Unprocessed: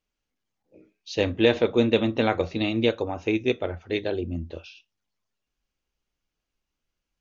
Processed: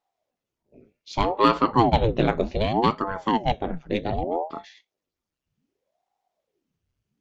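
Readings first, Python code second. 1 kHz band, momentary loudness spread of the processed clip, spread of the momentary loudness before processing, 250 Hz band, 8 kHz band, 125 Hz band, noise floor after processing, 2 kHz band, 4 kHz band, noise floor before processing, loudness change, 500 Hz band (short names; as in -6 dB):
+12.5 dB, 10 LU, 12 LU, -0.5 dB, n/a, +3.5 dB, under -85 dBFS, -3.0 dB, -1.5 dB, -85 dBFS, +1.5 dB, -1.5 dB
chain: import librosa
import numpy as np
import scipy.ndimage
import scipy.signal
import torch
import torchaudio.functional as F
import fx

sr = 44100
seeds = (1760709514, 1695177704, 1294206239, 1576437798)

y = fx.cheby_harmonics(x, sr, harmonics=(8,), levels_db=(-34,), full_scale_db=-4.5)
y = fx.low_shelf(y, sr, hz=360.0, db=9.0)
y = fx.ring_lfo(y, sr, carrier_hz=420.0, swing_pct=85, hz=0.65)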